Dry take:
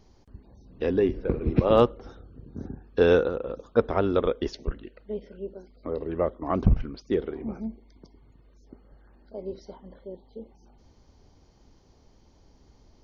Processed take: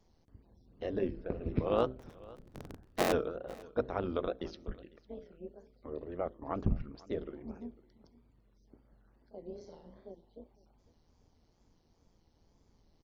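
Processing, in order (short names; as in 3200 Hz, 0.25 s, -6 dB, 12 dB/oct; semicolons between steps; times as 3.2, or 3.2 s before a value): 1.99–3.13 cycle switcher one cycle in 3, inverted; notches 60/120/180/240/300/360/420 Hz; 9.47–10.12 flutter echo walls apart 6.3 m, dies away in 0.61 s; AM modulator 170 Hz, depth 50%; wow and flutter 130 cents; echo 0.502 s -22 dB; gain -7.5 dB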